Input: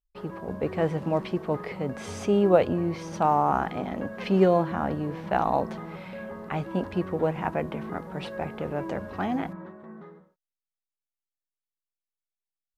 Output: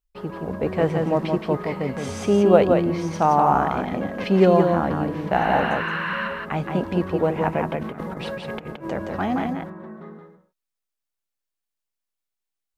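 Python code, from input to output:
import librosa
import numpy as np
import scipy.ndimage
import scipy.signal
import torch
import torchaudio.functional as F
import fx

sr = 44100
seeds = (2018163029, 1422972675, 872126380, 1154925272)

y = fx.spec_repair(x, sr, seeds[0], start_s=5.39, length_s=0.86, low_hz=930.0, high_hz=5800.0, source='before')
y = fx.over_compress(y, sr, threshold_db=-37.0, ratio=-0.5, at=(7.75, 8.85))
y = y + 10.0 ** (-4.5 / 20.0) * np.pad(y, (int(171 * sr / 1000.0), 0))[:len(y)]
y = y * 10.0 ** (4.0 / 20.0)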